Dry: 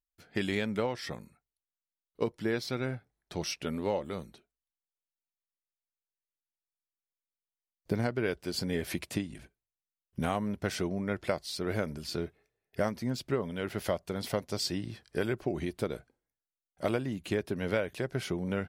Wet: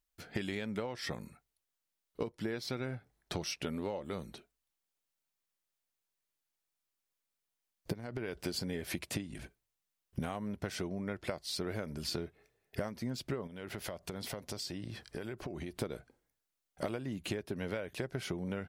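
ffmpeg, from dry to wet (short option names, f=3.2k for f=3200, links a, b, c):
-filter_complex "[0:a]asettb=1/sr,asplit=3[a][b][c];[a]atrim=end=7.934[d];[b]atrim=start=7.93:end=8.43,asetpts=PTS-STARTPTS,afade=t=in:d=0.004:c=qsin,afade=t=out:st=0.496:d=0.004:c=qsin,acompressor=threshold=-36dB:ratio=10:attack=3.2:release=140:knee=1:detection=peak[e];[c]atrim=start=8.426[f];[d][e]acrossfade=d=0.004:c1=hsin:c2=qsin[g];[g][f]acrossfade=d=0.004:c1=qsin:c2=hsin,asettb=1/sr,asplit=3[h][i][j];[h]atrim=end=13.474[k];[i]atrim=start=13.47:end=15.82,asetpts=PTS-STARTPTS,afade=t=in:d=0.004:c=qsin,afade=t=out:st=2.346:d=0.004:c=qsin,acompressor=threshold=-45dB:ratio=6:attack=3.2:release=140:knee=1:detection=peak[l];[j]atrim=start=15.816[m];[k][l]acrossfade=d=0.004:c1=hsin:c2=qsin[n];[n][m]acrossfade=d=0.004:c1=qsin:c2=hsin,acompressor=threshold=-41dB:ratio=10,volume=7dB"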